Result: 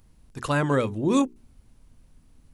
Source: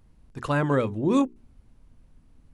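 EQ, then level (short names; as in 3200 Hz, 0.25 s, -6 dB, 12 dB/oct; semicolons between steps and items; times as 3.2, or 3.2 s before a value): high shelf 3800 Hz +10 dB; 0.0 dB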